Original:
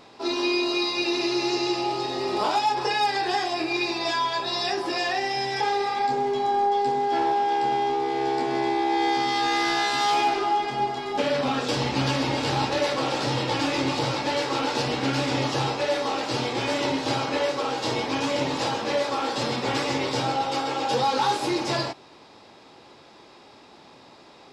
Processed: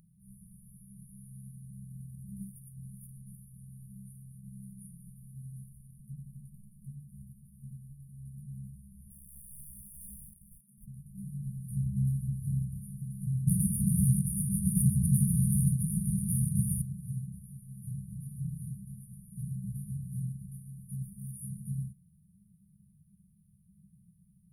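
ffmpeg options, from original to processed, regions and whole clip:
-filter_complex "[0:a]asettb=1/sr,asplit=3[s0][s1][s2];[s0]atrim=end=9.104[s3];[s1]atrim=start=9.1:end=10.88,asetpts=PTS-STARTPTS,afade=t=in:d=0.004:c=qsin,afade=t=out:st=1.776:d=0.004:c=qsin,highpass=f=270:w=0.5412,highpass=f=270:w=1.3066,asoftclip=type=hard:threshold=0.106[s4];[s2]atrim=start=10.876[s5];[s3][s4]acrossfade=d=0.004:c1=hsin:c2=qsin[s6];[s6][s5]acrossfade=d=0.004:c1=qsin:c2=hsin,asettb=1/sr,asplit=3[s7][s8][s9];[s7]atrim=end=13.474[s10];[s8]atrim=start=13.47:end=16.82,asetpts=PTS-STARTPTS,afade=t=in:d=0.004:c=qsin,afade=t=out:st=3.346:d=0.004:c=qsin,aeval=exprs='0.266*sin(PI/2*5.62*val(0)/0.266)':c=same,highpass=110,lowpass=8000[s11];[s9]atrim=start=16.816[s12];[s10][s11]acrossfade=d=0.004:c1=hsin:c2=qsin[s13];[s13][s12]acrossfade=d=0.004:c1=qsin:c2=hsin,afftfilt=real='re*(1-between(b*sr/4096,210,9200))':imag='im*(1-between(b*sr/4096,210,9200))':win_size=4096:overlap=0.75,equalizer=f=110:w=4.2:g=-9.5,volume=1.5"

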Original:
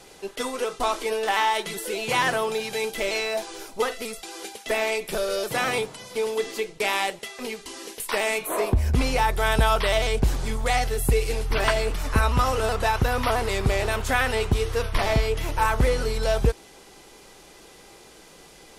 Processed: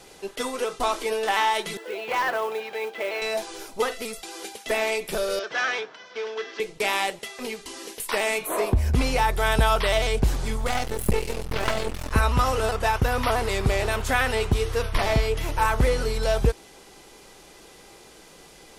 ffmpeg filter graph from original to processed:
-filter_complex "[0:a]asettb=1/sr,asplit=3[s0][s1][s2];[s0]atrim=end=1.774[s3];[s1]atrim=start=1.77:end=3.22,asetpts=PTS-STARTPTS,afade=t=in:d=0.004:c=qsin,afade=t=out:st=1.446:d=0.004:c=qsin,highpass=410,lowpass=2300,volume=9.44,asoftclip=hard,volume=0.106,acrusher=bits=5:mode=log:mix=0:aa=0.000001[s4];[s2]atrim=start=3.216[s5];[s3][s4]acrossfade=d=0.004:c1=hsin:c2=qsin[s6];[s6][s5]acrossfade=d=0.004:c1=qsin:c2=hsin,asettb=1/sr,asplit=3[s7][s8][s9];[s7]atrim=end=5.394[s10];[s8]atrim=start=5.39:end=6.6,asetpts=PTS-STARTPTS,afade=t=in:d=0.004:c=qsin,afade=t=out:st=1.206:d=0.004:c=qsin,asoftclip=type=hard:threshold=0.1,adynamicsmooth=sensitivity=2:basefreq=2500,highpass=460,equalizer=f=520:t=q:w=4:g=-5,equalizer=f=860:t=q:w=4:g=-5,equalizer=f=1600:t=q:w=4:g=9,equalizer=f=3300:t=q:w=4:g=4,equalizer=f=5700:t=q:w=4:g=8,lowpass=f=6600:w=0.5412,lowpass=f=6600:w=1.3066[s11];[s9]atrim=start=6.596[s12];[s10][s11]acrossfade=d=0.004:c1=hsin:c2=qsin[s13];[s13][s12]acrossfade=d=0.004:c1=qsin:c2=hsin,asettb=1/sr,asplit=3[s14][s15][s16];[s14]atrim=end=10.674[s17];[s15]atrim=start=10.67:end=12.12,asetpts=PTS-STARTPTS,afade=t=in:d=0.004:c=qsin,afade=t=out:st=1.446:d=0.004:c=qsin,highpass=56,equalizer=f=130:t=o:w=2.6:g=6,aeval=exprs='max(val(0),0)':c=same[s18];[s16]atrim=start=12.116[s19];[s17][s18]acrossfade=d=0.004:c1=hsin:c2=qsin[s20];[s20][s19]acrossfade=d=0.004:c1=qsin:c2=hsin,asettb=1/sr,asplit=3[s21][s22][s23];[s21]atrim=end=12.714[s24];[s22]atrim=start=12.71:end=13.14,asetpts=PTS-STARTPTS,afade=t=in:d=0.004:c=qsin,afade=t=out:st=0.426:d=0.004:c=qsin,agate=range=0.0224:threshold=0.0562:ratio=3:release=100:detection=peak,bandreject=f=4000:w=20[s25];[s23]atrim=start=13.136[s26];[s24][s25]acrossfade=d=0.004:c1=hsin:c2=qsin[s27];[s27][s26]acrossfade=d=0.004:c1=qsin:c2=hsin"

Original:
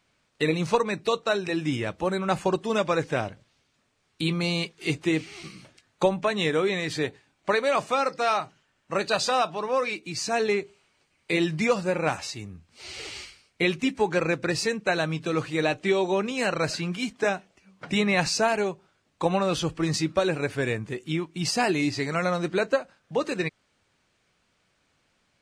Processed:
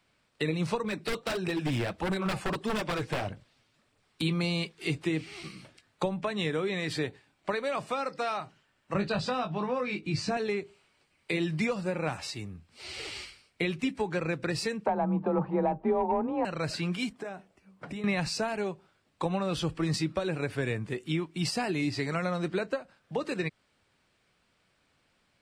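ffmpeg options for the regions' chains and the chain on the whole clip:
-filter_complex "[0:a]asettb=1/sr,asplit=3[s0][s1][s2];[s0]atrim=end=0.844[s3];[s1]atrim=start=0.84:end=4.22,asetpts=PTS-STARTPTS,afade=t=in:d=0.004:c=qsin,afade=t=out:st=3.376:d=0.004:c=qsin,flanger=delay=0.1:depth=9:regen=30:speed=1.6:shape=sinusoidal,acontrast=28,aeval=exprs='0.0891*(abs(mod(val(0)/0.0891+3,4)-2)-1)':c=same[s4];[s2]atrim=start=4.216[s5];[s3][s4]acrossfade=d=0.004:c1=hsin:c2=qsin[s6];[s6][s5]acrossfade=d=0.004:c1=qsin:c2=hsin,asettb=1/sr,asplit=3[s7][s8][s9];[s7]atrim=end=8.944[s10];[s8]atrim=start=8.94:end=10.37,asetpts=PTS-STARTPTS,afade=t=in:d=0.004:c=qsin,afade=t=out:st=1.426:d=0.004:c=qsin,lowpass=7800,bass=f=250:g=11,treble=f=4000:g=-5,asplit=2[s11][s12];[s12]adelay=20,volume=0.501[s13];[s11][s13]amix=inputs=2:normalize=0,atrim=end_sample=63063[s14];[s9]atrim=start=10.366[s15];[s10][s14]acrossfade=d=0.004:c1=hsin:c2=qsin[s16];[s16][s15]acrossfade=d=0.004:c1=qsin:c2=hsin,asettb=1/sr,asplit=3[s17][s18][s19];[s17]atrim=end=14.864[s20];[s18]atrim=start=14.86:end=16.45,asetpts=PTS-STARTPTS,afade=t=in:d=0.004:c=qsin,afade=t=out:st=1.586:d=0.004:c=qsin,lowpass=f=850:t=q:w=6.8,afreqshift=28,acontrast=48[s21];[s19]atrim=start=16.446[s22];[s20][s21]acrossfade=d=0.004:c1=hsin:c2=qsin[s23];[s23][s22]acrossfade=d=0.004:c1=qsin:c2=hsin,asettb=1/sr,asplit=3[s24][s25][s26];[s24]atrim=end=17.094[s27];[s25]atrim=start=17.09:end=18.04,asetpts=PTS-STARTPTS,afade=t=in:d=0.004:c=qsin,afade=t=out:st=0.946:d=0.004:c=qsin,equalizer=f=3700:t=o:w=2.3:g=-7.5,acompressor=threshold=0.0224:ratio=10:attack=3.2:release=140:knee=1:detection=peak[s28];[s26]atrim=start=18.036[s29];[s27][s28]acrossfade=d=0.004:c1=hsin:c2=qsin[s30];[s30][s29]acrossfade=d=0.004:c1=qsin:c2=hsin,acrossover=split=200[s31][s32];[s32]acompressor=threshold=0.0398:ratio=4[s33];[s31][s33]amix=inputs=2:normalize=0,equalizer=f=6400:t=o:w=0.26:g=-7,volume=0.891"

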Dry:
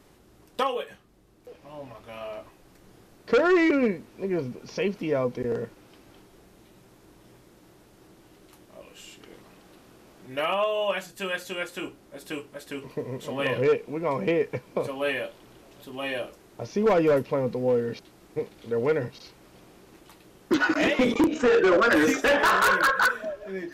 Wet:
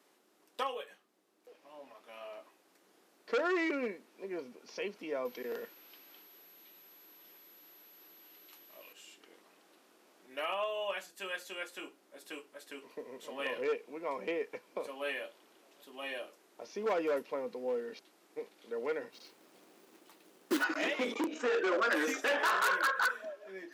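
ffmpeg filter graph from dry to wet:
-filter_complex "[0:a]asettb=1/sr,asplit=3[s0][s1][s2];[s0]atrim=end=5.254[s3];[s1]atrim=start=5.25:end=8.93,asetpts=PTS-STARTPTS,afade=t=in:d=0.004:c=qsin,afade=t=out:st=3.676:d=0.004:c=qsin,equalizer=f=3400:w=0.53:g=9,aeval=exprs='val(0)+0.00355*sin(2*PI*12000*n/s)':c=same[s4];[s2]atrim=start=8.926[s5];[s3][s4]acrossfade=d=0.004:c1=hsin:c2=qsin[s6];[s6][s5]acrossfade=d=0.004:c1=qsin:c2=hsin,asettb=1/sr,asplit=3[s7][s8][s9];[s7]atrim=end=19.124[s10];[s8]atrim=start=19.12:end=20.64,asetpts=PTS-STARTPTS,afade=t=in:d=0.004:c=qsin,afade=t=out:st=1.516:d=0.004:c=qsin,lowshelf=f=380:g=8,acrusher=bits=3:mode=log:mix=0:aa=0.000001[s11];[s9]atrim=start=20.636[s12];[s10][s11]acrossfade=d=0.004:c1=hsin:c2=qsin[s13];[s13][s12]acrossfade=d=0.004:c1=qsin:c2=hsin,highpass=f=230:w=0.5412,highpass=f=230:w=1.3066,lowshelf=f=390:g=-8.5,volume=0.398"

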